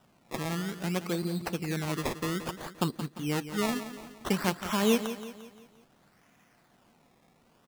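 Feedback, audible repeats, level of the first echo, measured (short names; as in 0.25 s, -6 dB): 47%, 4, -11.5 dB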